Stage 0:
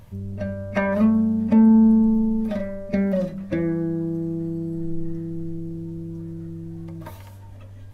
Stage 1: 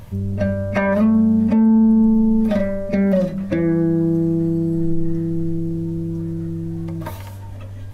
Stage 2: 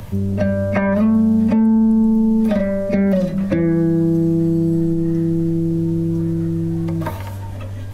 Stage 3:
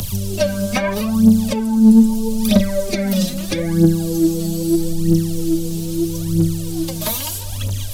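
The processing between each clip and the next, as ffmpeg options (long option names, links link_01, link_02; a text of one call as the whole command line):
ffmpeg -i in.wav -af "alimiter=limit=-17dB:level=0:latency=1:release=278,volume=8.5dB" out.wav
ffmpeg -i in.wav -filter_complex "[0:a]acrossover=split=110|240|2400[link_01][link_02][link_03][link_04];[link_01]acompressor=threshold=-36dB:ratio=4[link_05];[link_02]acompressor=threshold=-26dB:ratio=4[link_06];[link_03]acompressor=threshold=-26dB:ratio=4[link_07];[link_04]acompressor=threshold=-49dB:ratio=4[link_08];[link_05][link_06][link_07][link_08]amix=inputs=4:normalize=0,volume=6.5dB" out.wav
ffmpeg -i in.wav -af "aexciter=amount=7.6:drive=6.1:freq=2800,aphaser=in_gain=1:out_gain=1:delay=4.9:decay=0.7:speed=0.78:type=triangular,volume=-3dB" out.wav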